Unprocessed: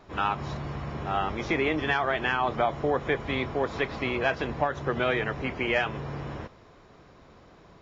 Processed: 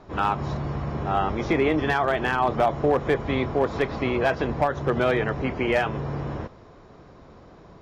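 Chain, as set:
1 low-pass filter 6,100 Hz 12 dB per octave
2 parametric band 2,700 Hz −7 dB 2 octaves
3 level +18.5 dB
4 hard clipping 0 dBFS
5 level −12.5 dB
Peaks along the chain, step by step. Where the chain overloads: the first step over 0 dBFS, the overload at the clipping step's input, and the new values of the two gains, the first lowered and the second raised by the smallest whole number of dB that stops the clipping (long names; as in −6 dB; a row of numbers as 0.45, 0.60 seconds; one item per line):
−11.0, −14.0, +4.5, 0.0, −12.5 dBFS
step 3, 4.5 dB
step 3 +13.5 dB, step 5 −7.5 dB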